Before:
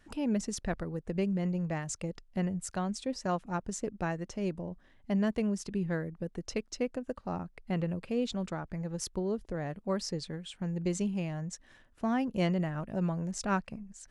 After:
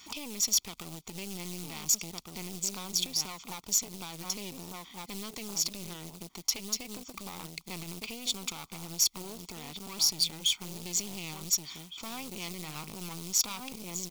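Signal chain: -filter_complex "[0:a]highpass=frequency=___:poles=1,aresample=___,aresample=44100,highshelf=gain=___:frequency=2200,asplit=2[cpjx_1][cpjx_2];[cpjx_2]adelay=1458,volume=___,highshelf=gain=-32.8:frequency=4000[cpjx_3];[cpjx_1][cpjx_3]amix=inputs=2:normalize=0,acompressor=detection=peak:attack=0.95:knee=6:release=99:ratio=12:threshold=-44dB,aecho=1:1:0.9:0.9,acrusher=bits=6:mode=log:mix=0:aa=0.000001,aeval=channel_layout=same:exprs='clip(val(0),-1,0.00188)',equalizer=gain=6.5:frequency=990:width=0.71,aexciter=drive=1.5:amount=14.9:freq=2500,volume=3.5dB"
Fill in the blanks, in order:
380, 16000, -7, -9dB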